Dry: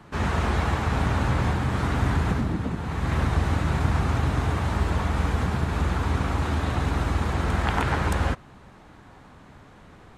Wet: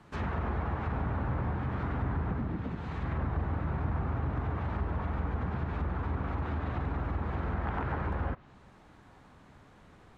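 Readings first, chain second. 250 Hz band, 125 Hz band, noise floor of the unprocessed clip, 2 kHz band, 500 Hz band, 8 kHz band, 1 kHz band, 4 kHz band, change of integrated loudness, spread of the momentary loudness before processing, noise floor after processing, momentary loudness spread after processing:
-8.5 dB, -8.5 dB, -49 dBFS, -11.5 dB, -8.5 dB, under -25 dB, -9.0 dB, -19.0 dB, -8.5 dB, 3 LU, -57 dBFS, 2 LU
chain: soft clip -14 dBFS, distortion -22 dB; treble ducked by the level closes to 1500 Hz, closed at -20.5 dBFS; gain -7.5 dB

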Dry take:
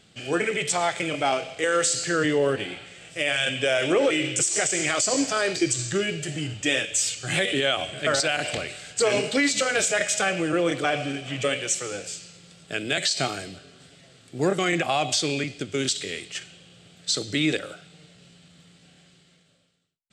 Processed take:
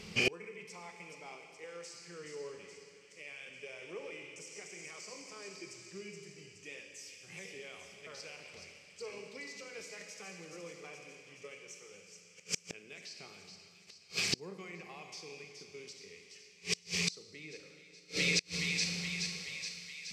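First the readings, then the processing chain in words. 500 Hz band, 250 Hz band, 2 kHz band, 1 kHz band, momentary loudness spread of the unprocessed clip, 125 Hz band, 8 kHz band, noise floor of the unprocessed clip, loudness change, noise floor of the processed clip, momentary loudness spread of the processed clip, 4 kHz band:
-20.5 dB, -19.5 dB, -13.5 dB, -24.5 dB, 10 LU, -14.5 dB, -16.5 dB, -57 dBFS, -15.5 dB, -60 dBFS, 19 LU, -12.5 dB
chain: ripple EQ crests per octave 0.83, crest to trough 12 dB; on a send: thin delay 0.423 s, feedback 63%, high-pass 2900 Hz, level -5.5 dB; on the sum: Schroeder reverb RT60 2.3 s, combs from 31 ms, DRR 5 dB; flipped gate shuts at -24 dBFS, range -33 dB; gain +6.5 dB

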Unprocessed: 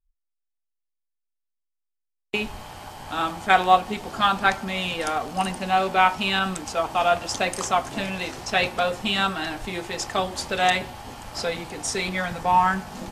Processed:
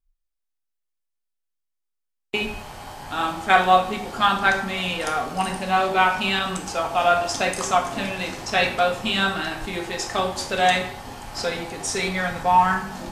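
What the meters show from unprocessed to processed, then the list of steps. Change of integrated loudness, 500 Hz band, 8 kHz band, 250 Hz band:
+1.5 dB, +2.0 dB, +1.5 dB, +1.0 dB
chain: plate-style reverb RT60 0.61 s, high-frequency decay 0.8×, DRR 3 dB

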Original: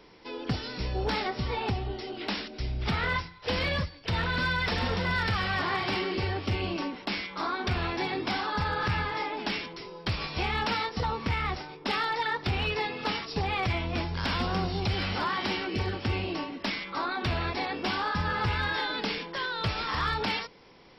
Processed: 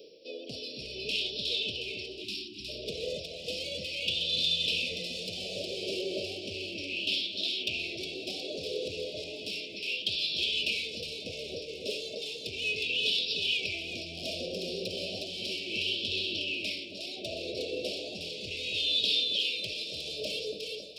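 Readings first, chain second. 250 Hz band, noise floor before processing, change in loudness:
-9.5 dB, -48 dBFS, -1.5 dB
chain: soft clip -24.5 dBFS, distortion -17 dB; Chebyshev band-stop 630–2500 Hz, order 5; low shelf 280 Hz -8.5 dB; on a send: split-band echo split 1200 Hz, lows 0.274 s, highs 0.362 s, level -3.5 dB; on the sum: spectral delete 2.24–2.69, 390–1300 Hz; reverse; upward compressor, threshold -45 dBFS; reverse; HPF 210 Hz 6 dB/oct; high shelf 4800 Hz +8.5 dB; LFO bell 0.34 Hz 470–3600 Hz +13 dB; gain -3.5 dB

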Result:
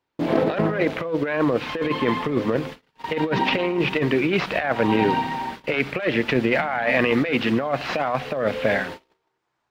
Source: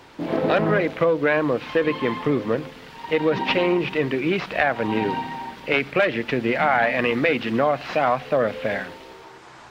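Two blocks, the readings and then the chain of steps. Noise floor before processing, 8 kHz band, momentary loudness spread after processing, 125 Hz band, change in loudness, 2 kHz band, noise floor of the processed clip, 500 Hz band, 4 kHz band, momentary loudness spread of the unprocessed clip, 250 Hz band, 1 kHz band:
-44 dBFS, n/a, 6 LU, +1.5 dB, -0.5 dB, -0.5 dB, -76 dBFS, -1.5 dB, +1.0 dB, 8 LU, +1.5 dB, -1.0 dB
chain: gate -37 dBFS, range -36 dB; negative-ratio compressor -22 dBFS, ratio -0.5; gain +2 dB

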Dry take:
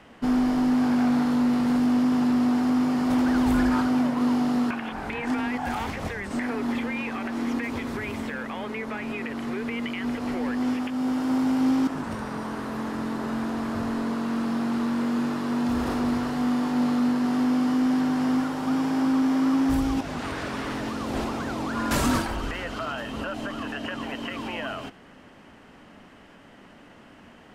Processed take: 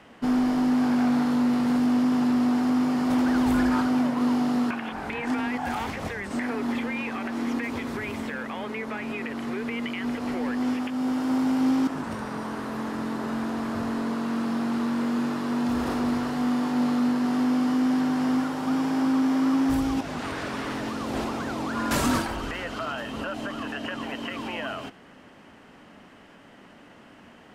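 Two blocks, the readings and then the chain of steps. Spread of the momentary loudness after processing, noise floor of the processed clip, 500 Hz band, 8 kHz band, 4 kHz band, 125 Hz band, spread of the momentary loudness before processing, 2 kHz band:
10 LU, -51 dBFS, 0.0 dB, 0.0 dB, 0.0 dB, -2.0 dB, 10 LU, 0.0 dB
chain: low shelf 62 Hz -8.5 dB

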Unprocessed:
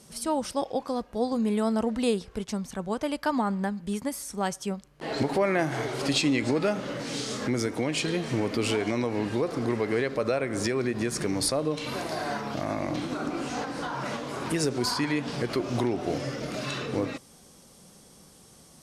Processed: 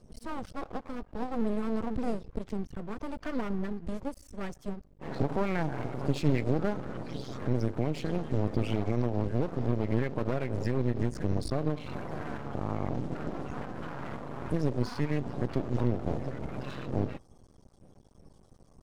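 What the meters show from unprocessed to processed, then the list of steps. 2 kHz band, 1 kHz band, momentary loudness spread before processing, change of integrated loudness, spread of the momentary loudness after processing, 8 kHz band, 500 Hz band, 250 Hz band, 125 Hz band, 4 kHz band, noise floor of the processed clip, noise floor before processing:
-9.5 dB, -7.0 dB, 7 LU, -4.5 dB, 10 LU, -19.5 dB, -6.0 dB, -4.0 dB, +3.0 dB, -15.0 dB, -59 dBFS, -54 dBFS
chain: bin magnitudes rounded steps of 30 dB; RIAA curve playback; half-wave rectifier; gain -5 dB

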